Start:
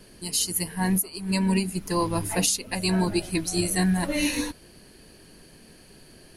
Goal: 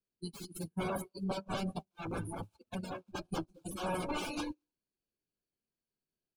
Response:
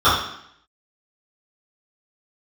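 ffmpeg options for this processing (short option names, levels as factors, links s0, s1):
-filter_complex "[0:a]lowshelf=f=67:g=-3,aeval=exprs='(mod(12.6*val(0)+1,2)-1)/12.6':c=same,asplit=3[s0][s1][s2];[s0]afade=t=out:st=1.38:d=0.02[s3];[s1]tremolo=f=1.8:d=0.82,afade=t=in:st=1.38:d=0.02,afade=t=out:st=3.65:d=0.02[s4];[s2]afade=t=in:st=3.65:d=0.02[s5];[s3][s4][s5]amix=inputs=3:normalize=0,acompressor=threshold=0.01:ratio=6,aeval=exprs='clip(val(0),-1,0.0126)':c=same,aecho=1:1:70|188|218|378:0.158|0.282|0.376|0.112,agate=range=0.0708:threshold=0.00891:ratio=16:detection=peak,afftdn=nr=30:nf=-43,asuperstop=centerf=1900:order=8:qfactor=4,highshelf=f=7100:g=-9,volume=2.51"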